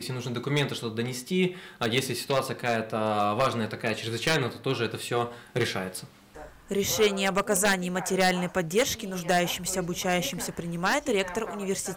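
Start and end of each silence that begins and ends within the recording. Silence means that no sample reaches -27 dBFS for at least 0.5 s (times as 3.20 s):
5.96–6.71 s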